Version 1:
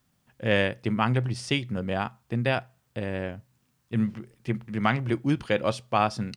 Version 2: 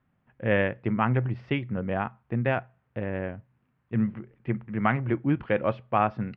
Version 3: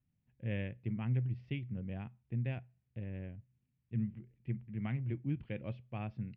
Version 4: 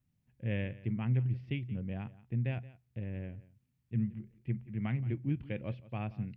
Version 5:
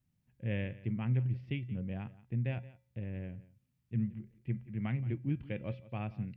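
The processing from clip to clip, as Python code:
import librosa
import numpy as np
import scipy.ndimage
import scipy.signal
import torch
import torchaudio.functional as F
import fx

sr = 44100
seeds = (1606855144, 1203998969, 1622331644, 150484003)

y1 = scipy.signal.sosfilt(scipy.signal.butter(4, 2300.0, 'lowpass', fs=sr, output='sos'), x)
y2 = fx.curve_eq(y1, sr, hz=(120.0, 1300.0, 2400.0), db=(0, -23, -7))
y2 = F.gain(torch.from_numpy(y2), -6.0).numpy()
y3 = y2 + 10.0 ** (-19.0 / 20.0) * np.pad(y2, (int(175 * sr / 1000.0), 0))[:len(y2)]
y3 = F.gain(torch.from_numpy(y3), 3.0).numpy()
y4 = fx.comb_fb(y3, sr, f0_hz=180.0, decay_s=0.5, harmonics='odd', damping=0.0, mix_pct=50)
y4 = F.gain(torch.from_numpy(y4), 5.0).numpy()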